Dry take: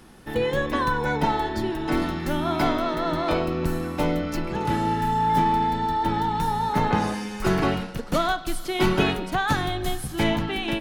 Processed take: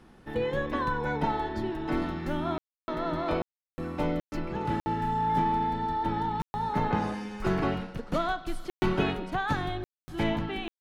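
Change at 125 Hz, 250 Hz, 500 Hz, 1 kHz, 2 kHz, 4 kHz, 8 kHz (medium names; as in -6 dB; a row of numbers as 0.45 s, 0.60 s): -5.5 dB, -5.5 dB, -6.0 dB, -6.0 dB, -7.0 dB, -10.0 dB, under -15 dB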